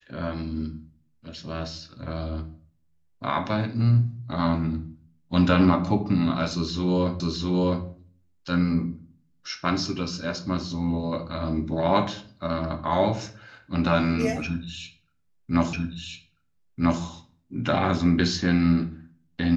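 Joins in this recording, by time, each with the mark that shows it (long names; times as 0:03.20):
0:07.20: the same again, the last 0.66 s
0:15.73: the same again, the last 1.29 s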